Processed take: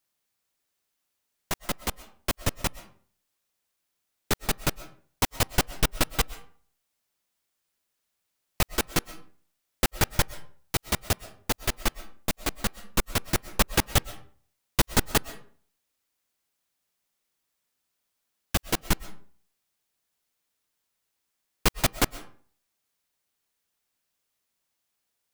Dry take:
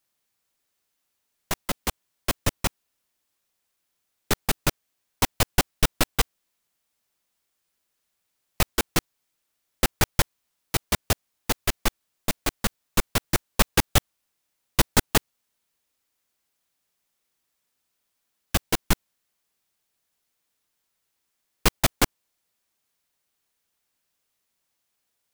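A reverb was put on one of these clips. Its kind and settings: algorithmic reverb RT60 0.48 s, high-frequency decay 0.65×, pre-delay 85 ms, DRR 16 dB; trim -2.5 dB

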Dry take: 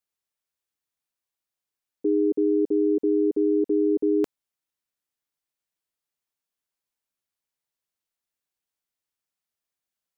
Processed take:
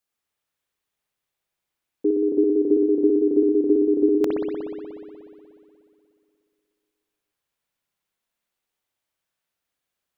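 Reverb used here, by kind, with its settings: spring tank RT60 2.6 s, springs 60 ms, chirp 35 ms, DRR -3.5 dB; trim +3 dB

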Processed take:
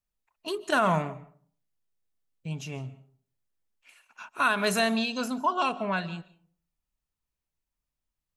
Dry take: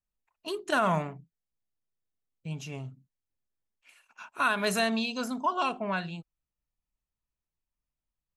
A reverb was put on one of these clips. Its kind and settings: algorithmic reverb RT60 0.5 s, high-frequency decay 0.5×, pre-delay 105 ms, DRR 18.5 dB; trim +2 dB

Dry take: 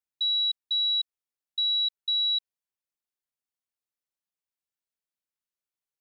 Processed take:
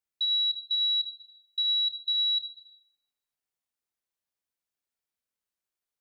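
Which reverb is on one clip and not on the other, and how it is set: plate-style reverb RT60 1.5 s, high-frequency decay 0.5×, DRR 2 dB

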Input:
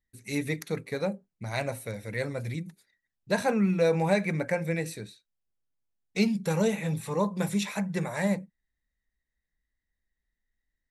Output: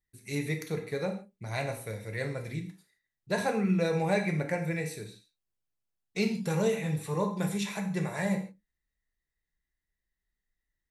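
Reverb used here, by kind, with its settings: gated-style reverb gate 180 ms falling, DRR 3.5 dB; trim -3.5 dB

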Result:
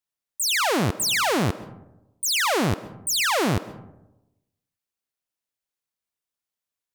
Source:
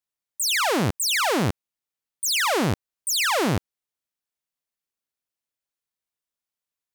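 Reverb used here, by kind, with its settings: algorithmic reverb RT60 0.96 s, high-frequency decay 0.35×, pre-delay 95 ms, DRR 16 dB

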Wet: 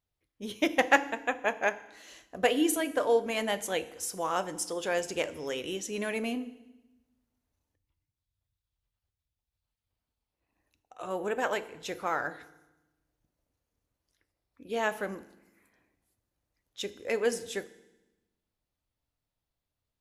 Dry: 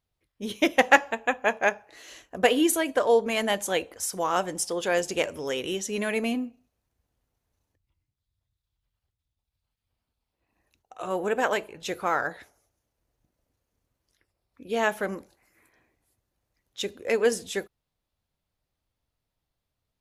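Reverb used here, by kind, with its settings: FDN reverb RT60 0.99 s, low-frequency decay 1.4×, high-frequency decay 1×, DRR 13.5 dB; trim -5 dB

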